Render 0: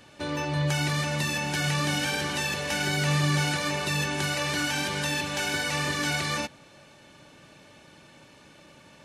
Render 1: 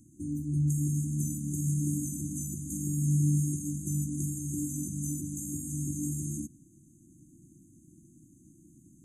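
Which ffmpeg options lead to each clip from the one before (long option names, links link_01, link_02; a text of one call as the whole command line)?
ffmpeg -i in.wav -af "afftfilt=real='re*(1-between(b*sr/4096,360,6200))':imag='im*(1-between(b*sr/4096,360,6200))':win_size=4096:overlap=0.75" out.wav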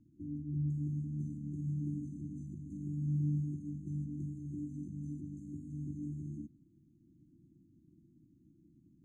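ffmpeg -i in.wav -af "lowpass=1600,volume=-7dB" out.wav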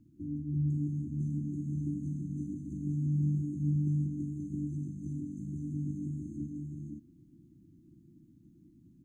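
ffmpeg -i in.wav -af "aecho=1:1:525:0.668,volume=4dB" out.wav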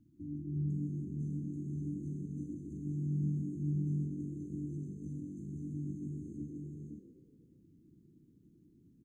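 ffmpeg -i in.wav -filter_complex "[0:a]asplit=6[link_01][link_02][link_03][link_04][link_05][link_06];[link_02]adelay=125,afreqshift=44,volume=-11.5dB[link_07];[link_03]adelay=250,afreqshift=88,volume=-18.2dB[link_08];[link_04]adelay=375,afreqshift=132,volume=-25dB[link_09];[link_05]adelay=500,afreqshift=176,volume=-31.7dB[link_10];[link_06]adelay=625,afreqshift=220,volume=-38.5dB[link_11];[link_01][link_07][link_08][link_09][link_10][link_11]amix=inputs=6:normalize=0,volume=-4.5dB" out.wav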